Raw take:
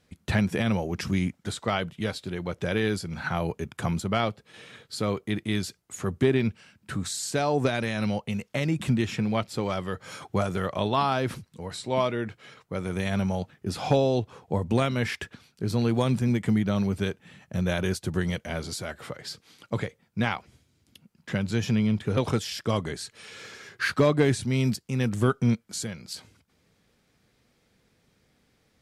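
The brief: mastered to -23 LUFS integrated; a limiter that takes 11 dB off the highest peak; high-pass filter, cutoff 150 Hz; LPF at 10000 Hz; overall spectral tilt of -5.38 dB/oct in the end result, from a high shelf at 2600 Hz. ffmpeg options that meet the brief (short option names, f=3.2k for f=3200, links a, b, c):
-af "highpass=150,lowpass=10k,highshelf=f=2.6k:g=-4.5,volume=9.5dB,alimiter=limit=-11dB:level=0:latency=1"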